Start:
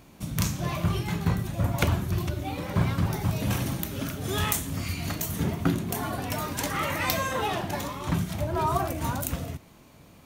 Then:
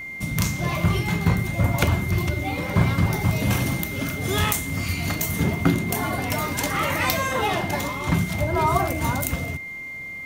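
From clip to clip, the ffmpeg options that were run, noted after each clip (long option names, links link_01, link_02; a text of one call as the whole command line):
ffmpeg -i in.wav -filter_complex "[0:a]asplit=2[link_01][link_02];[link_02]alimiter=limit=-12dB:level=0:latency=1:release=415,volume=-2dB[link_03];[link_01][link_03]amix=inputs=2:normalize=0,aeval=exprs='val(0)+0.0251*sin(2*PI*2100*n/s)':channel_layout=same" out.wav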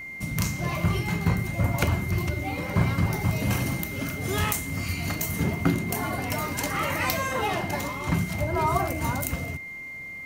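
ffmpeg -i in.wav -af "bandreject=frequency=3500:width=10,volume=-3.5dB" out.wav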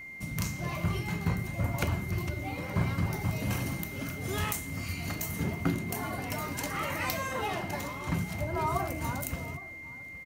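ffmpeg -i in.wav -filter_complex "[0:a]asplit=2[link_01][link_02];[link_02]adelay=816.3,volume=-18dB,highshelf=frequency=4000:gain=-18.4[link_03];[link_01][link_03]amix=inputs=2:normalize=0,volume=-6dB" out.wav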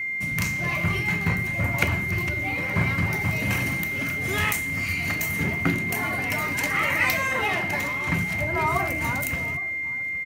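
ffmpeg -i in.wav -af "highpass=63,equalizer=frequency=2100:width_type=o:width=0.74:gain=11,volume=4.5dB" out.wav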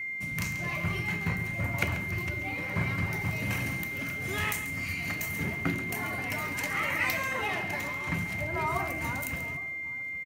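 ffmpeg -i in.wav -af "aecho=1:1:137:0.251,volume=-6.5dB" out.wav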